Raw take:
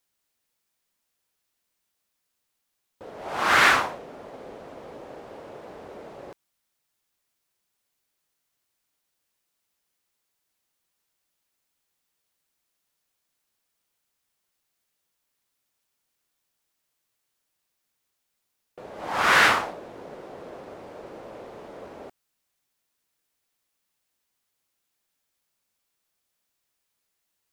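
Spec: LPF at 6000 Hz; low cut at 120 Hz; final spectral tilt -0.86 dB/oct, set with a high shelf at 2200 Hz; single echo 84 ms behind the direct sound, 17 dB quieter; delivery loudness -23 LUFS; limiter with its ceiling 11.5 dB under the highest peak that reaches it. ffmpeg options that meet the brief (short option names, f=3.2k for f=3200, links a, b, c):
-af "highpass=120,lowpass=6k,highshelf=f=2.2k:g=-5,alimiter=limit=-18dB:level=0:latency=1,aecho=1:1:84:0.141,volume=10.5dB"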